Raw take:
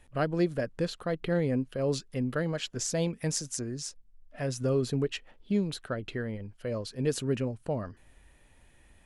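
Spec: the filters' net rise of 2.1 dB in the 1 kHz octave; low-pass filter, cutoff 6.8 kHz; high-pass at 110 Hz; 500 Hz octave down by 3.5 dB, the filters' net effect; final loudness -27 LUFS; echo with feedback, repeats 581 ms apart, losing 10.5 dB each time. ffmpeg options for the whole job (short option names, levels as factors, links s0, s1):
-af "highpass=110,lowpass=6800,equalizer=f=500:t=o:g=-5.5,equalizer=f=1000:t=o:g=5.5,aecho=1:1:581|1162|1743:0.299|0.0896|0.0269,volume=2.11"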